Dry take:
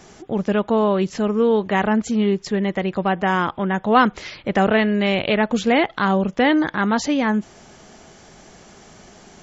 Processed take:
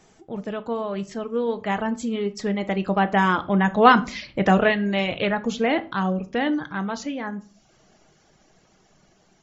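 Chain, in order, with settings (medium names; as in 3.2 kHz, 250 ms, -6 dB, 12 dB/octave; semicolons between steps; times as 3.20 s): Doppler pass-by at 3.81 s, 11 m/s, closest 11 m; reverb removal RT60 0.74 s; simulated room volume 300 m³, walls furnished, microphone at 0.58 m; trim +1.5 dB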